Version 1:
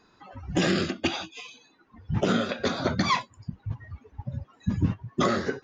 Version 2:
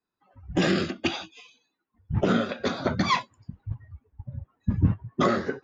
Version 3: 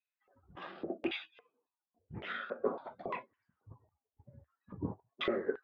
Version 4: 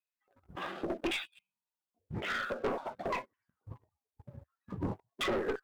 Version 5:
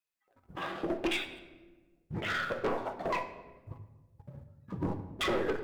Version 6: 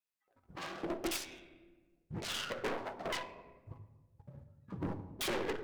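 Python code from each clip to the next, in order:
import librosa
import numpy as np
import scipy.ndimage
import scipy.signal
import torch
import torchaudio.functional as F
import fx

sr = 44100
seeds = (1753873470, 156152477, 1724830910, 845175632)

y1 = fx.high_shelf(x, sr, hz=4600.0, db=-8.0)
y1 = fx.band_widen(y1, sr, depth_pct=70)
y2 = fx.filter_lfo_bandpass(y1, sr, shape='square', hz=1.8, low_hz=430.0, high_hz=3600.0, q=2.6)
y2 = fx.peak_eq(y2, sr, hz=76.0, db=3.0, octaves=0.44)
y2 = fx.filter_lfo_lowpass(y2, sr, shape='saw_down', hz=0.96, low_hz=590.0, high_hz=2600.0, q=5.2)
y2 = y2 * 10.0 ** (-2.5 / 20.0)
y3 = fx.spec_repair(y2, sr, seeds[0], start_s=1.28, length_s=0.44, low_hz=230.0, high_hz=2100.0, source='after')
y3 = fx.clip_asym(y3, sr, top_db=-40.0, bottom_db=-25.0)
y3 = fx.leveller(y3, sr, passes=2)
y4 = fx.room_shoebox(y3, sr, seeds[1], volume_m3=840.0, walls='mixed', distance_m=0.64)
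y4 = y4 * 10.0 ** (1.5 / 20.0)
y5 = fx.self_delay(y4, sr, depth_ms=0.36)
y5 = y5 * 10.0 ** (-4.5 / 20.0)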